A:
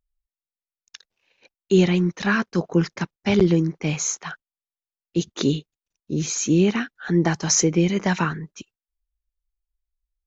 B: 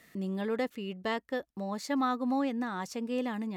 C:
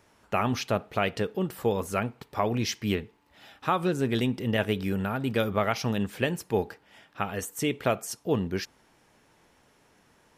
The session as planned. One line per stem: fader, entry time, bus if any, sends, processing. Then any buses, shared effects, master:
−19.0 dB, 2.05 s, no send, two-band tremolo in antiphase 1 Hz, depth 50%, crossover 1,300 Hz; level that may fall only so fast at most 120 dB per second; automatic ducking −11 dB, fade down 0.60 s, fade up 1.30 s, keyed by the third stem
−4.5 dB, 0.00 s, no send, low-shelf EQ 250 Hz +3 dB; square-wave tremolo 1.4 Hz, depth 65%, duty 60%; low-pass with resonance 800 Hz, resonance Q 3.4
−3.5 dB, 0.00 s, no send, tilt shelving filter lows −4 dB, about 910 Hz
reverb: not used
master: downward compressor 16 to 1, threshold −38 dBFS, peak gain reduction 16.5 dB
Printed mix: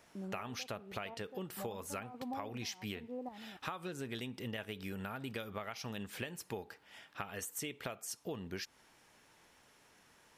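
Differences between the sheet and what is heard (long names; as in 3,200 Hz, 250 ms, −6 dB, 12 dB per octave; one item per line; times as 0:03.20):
stem A: muted
stem B −4.5 dB → −11.0 dB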